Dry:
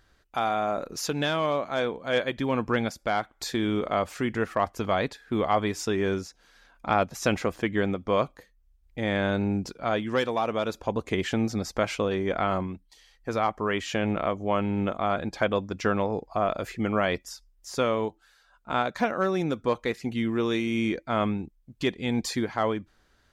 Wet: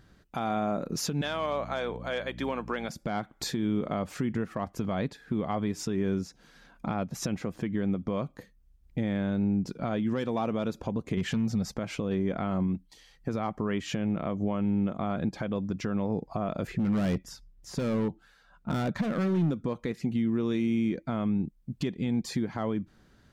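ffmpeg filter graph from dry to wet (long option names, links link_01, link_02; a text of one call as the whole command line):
ffmpeg -i in.wav -filter_complex "[0:a]asettb=1/sr,asplit=3[link_01][link_02][link_03];[link_01]atrim=end=1.214[link_04];[link_02]atrim=start=1.21:end=2.9,asetpts=PTS-STARTPTS,afade=type=in:duration=0.004:curve=qsin,afade=type=out:start_time=1.686:duration=0.004:curve=qsin,highpass=570,aeval=exprs='val(0)+0.00398*(sin(2*PI*60*n/s)+sin(2*PI*2*60*n/s)/2+sin(2*PI*3*60*n/s)/3+sin(2*PI*4*60*n/s)/4+sin(2*PI*5*60*n/s)/5)':channel_layout=same[link_05];[link_03]atrim=start=2.896[link_06];[link_04][link_05]acrossfade=duration=0.004:curve1=hsin:curve2=qsin[link_07];[link_07][link_06]acrossfade=duration=0.004:curve1=qsin:curve2=hsin,asettb=1/sr,asplit=3[link_08][link_09][link_10];[link_08]atrim=end=11.174[link_11];[link_09]atrim=start=11.17:end=11.74,asetpts=PTS-STARTPTS,afade=type=in:duration=0.004:curve=qsin,afade=type=out:start_time=0.566:duration=0.004:curve=qsin,aeval=exprs='0.224*sin(PI/2*1.78*val(0)/0.224)':channel_layout=same,equalizer=frequency=310:width_type=o:width=0.48:gain=-11.5[link_12];[link_10]atrim=start=11.736[link_13];[link_11][link_12]acrossfade=duration=0.004:curve1=hsin:curve2=qsin[link_14];[link_14][link_13]acrossfade=duration=0.004:curve1=qsin:curve2=hsin,asettb=1/sr,asplit=3[link_15][link_16][link_17];[link_15]atrim=end=16.674[link_18];[link_16]atrim=start=16.67:end=19.51,asetpts=PTS-STARTPTS,afade=type=in:duration=0.004:curve=qsin,afade=type=out:start_time=2.836:duration=0.004:curve=qsin,bass=frequency=250:gain=5,treble=frequency=4000:gain=-6,asoftclip=type=hard:threshold=-28dB[link_19];[link_17]atrim=start=19.506[link_20];[link_18][link_19]acrossfade=duration=0.004:curve1=hsin:curve2=qsin[link_21];[link_21][link_20]acrossfade=duration=0.004:curve1=qsin:curve2=hsin,equalizer=frequency=170:width_type=o:width=1.9:gain=14.5,acompressor=threshold=-24dB:ratio=4,alimiter=limit=-20dB:level=0:latency=1:release=168" out.wav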